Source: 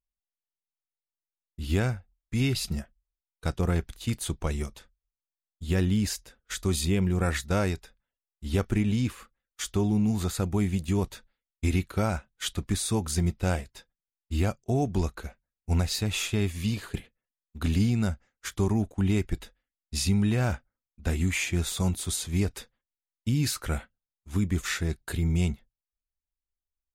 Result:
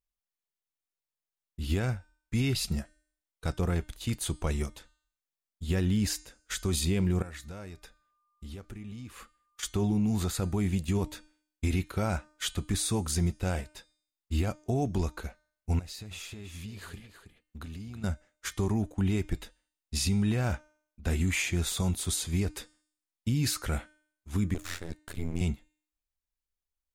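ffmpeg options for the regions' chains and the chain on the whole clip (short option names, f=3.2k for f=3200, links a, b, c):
-filter_complex "[0:a]asettb=1/sr,asplit=3[a][b][c];[a]atrim=end=7.224[d];[b]atrim=start=7.22:end=9.63,asetpts=PTS-STARTPTS,afade=t=in:d=0.004:c=qsin,afade=t=out:st=2.406:d=0.004:c=qsin,acompressor=threshold=-40dB:ratio=6:attack=3.2:release=140:knee=1:detection=peak,aeval=exprs='val(0)+0.000224*sin(2*PI*1200*n/s)':c=same[e];[c]atrim=start=9.626[f];[d][e]acrossfade=d=0.004:c1=hsin:c2=qsin[g];[g][f]acrossfade=d=0.004:c1=qsin:c2=hsin,asettb=1/sr,asplit=3[h][i][j];[h]atrim=end=15.794[k];[i]atrim=start=15.79:end=18.04,asetpts=PTS-STARTPTS,afade=t=in:d=0.004:c=qsin,afade=t=out:st=2.246:d=0.004:c=qsin,acompressor=threshold=-39dB:ratio=8:attack=3.2:release=140:knee=1:detection=peak,aecho=1:1:322:0.335,atrim=end_sample=99225[l];[j]atrim=start=18.036[m];[k][l]acrossfade=d=0.004:c1=hsin:c2=qsin[n];[n][m]acrossfade=d=0.004:c1=qsin:c2=hsin,asettb=1/sr,asplit=3[o][p][q];[o]atrim=end=24.544[r];[p]atrim=start=24.54:end=25.41,asetpts=PTS-STARTPTS,afade=t=in:d=0.004:c=qsin,afade=t=out:st=0.866:d=0.004:c=qsin,aeval=exprs='max(val(0),0)':c=same,tremolo=f=87:d=0.919[s];[q]atrim=start=25.406[t];[r][s]acrossfade=d=0.004:c1=hsin:c2=qsin[u];[u][t]acrossfade=d=0.004:c1=qsin:c2=hsin,alimiter=limit=-19.5dB:level=0:latency=1:release=26,bandreject=f=304.1:t=h:w=4,bandreject=f=608.2:t=h:w=4,bandreject=f=912.3:t=h:w=4,bandreject=f=1.2164k:t=h:w=4,bandreject=f=1.5205k:t=h:w=4,bandreject=f=1.8246k:t=h:w=4,bandreject=f=2.1287k:t=h:w=4,bandreject=f=2.4328k:t=h:w=4,bandreject=f=2.7369k:t=h:w=4,bandreject=f=3.041k:t=h:w=4,bandreject=f=3.3451k:t=h:w=4,bandreject=f=3.6492k:t=h:w=4,bandreject=f=3.9533k:t=h:w=4,bandreject=f=4.2574k:t=h:w=4,bandreject=f=4.5615k:t=h:w=4,bandreject=f=4.8656k:t=h:w=4,bandreject=f=5.1697k:t=h:w=4,bandreject=f=5.4738k:t=h:w=4,bandreject=f=5.7779k:t=h:w=4,bandreject=f=6.082k:t=h:w=4,bandreject=f=6.3861k:t=h:w=4,bandreject=f=6.6902k:t=h:w=4,bandreject=f=6.9943k:t=h:w=4,bandreject=f=7.2984k:t=h:w=4,bandreject=f=7.6025k:t=h:w=4,bandreject=f=7.9066k:t=h:w=4,bandreject=f=8.2107k:t=h:w=4,bandreject=f=8.5148k:t=h:w=4,bandreject=f=8.8189k:t=h:w=4,bandreject=f=9.123k:t=h:w=4,bandreject=f=9.4271k:t=h:w=4,bandreject=f=9.7312k:t=h:w=4"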